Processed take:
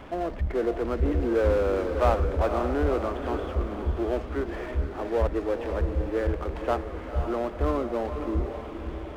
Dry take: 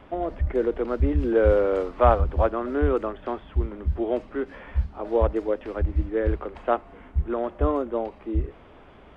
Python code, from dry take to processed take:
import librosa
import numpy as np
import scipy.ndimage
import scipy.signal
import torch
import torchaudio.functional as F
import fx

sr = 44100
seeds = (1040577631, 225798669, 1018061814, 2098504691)

y = fx.power_curve(x, sr, exponent=0.7)
y = fx.echo_diffused(y, sr, ms=519, feedback_pct=46, wet_db=-7)
y = y * librosa.db_to_amplitude(-7.5)